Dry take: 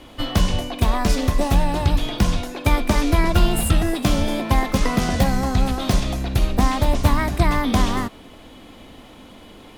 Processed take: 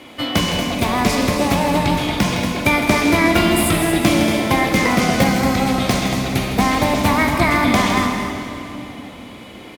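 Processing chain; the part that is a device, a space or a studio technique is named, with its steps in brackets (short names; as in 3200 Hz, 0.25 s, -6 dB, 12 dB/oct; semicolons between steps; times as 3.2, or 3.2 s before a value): stadium PA (HPF 140 Hz 12 dB/oct; bell 2200 Hz +8 dB 0.28 oct; loudspeakers at several distances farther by 55 m -10 dB, 80 m -11 dB; reverb RT60 3.1 s, pre-delay 23 ms, DRR 4 dB); gain +3.5 dB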